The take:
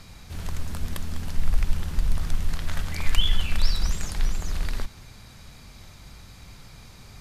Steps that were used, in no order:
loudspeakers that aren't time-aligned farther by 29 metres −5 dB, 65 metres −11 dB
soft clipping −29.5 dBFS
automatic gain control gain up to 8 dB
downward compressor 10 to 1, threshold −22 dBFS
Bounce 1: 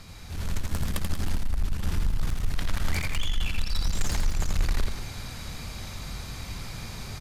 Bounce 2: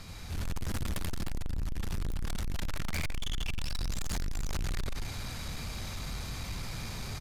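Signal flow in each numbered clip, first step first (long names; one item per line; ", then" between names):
downward compressor, then soft clipping, then loudspeakers that aren't time-aligned, then automatic gain control
downward compressor, then loudspeakers that aren't time-aligned, then automatic gain control, then soft clipping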